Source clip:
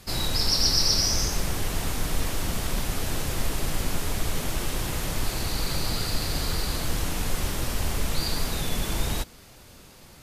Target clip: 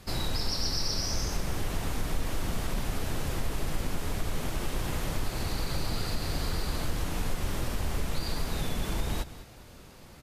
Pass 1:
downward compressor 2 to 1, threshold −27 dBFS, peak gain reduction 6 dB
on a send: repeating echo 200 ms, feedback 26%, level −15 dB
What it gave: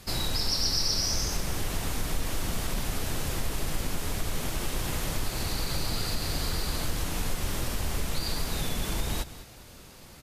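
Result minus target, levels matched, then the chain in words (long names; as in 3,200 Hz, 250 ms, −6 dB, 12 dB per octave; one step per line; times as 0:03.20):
8,000 Hz band +3.0 dB
downward compressor 2 to 1, threshold −27 dBFS, peak gain reduction 6 dB
high-shelf EQ 2,900 Hz −6.5 dB
on a send: repeating echo 200 ms, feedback 26%, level −15 dB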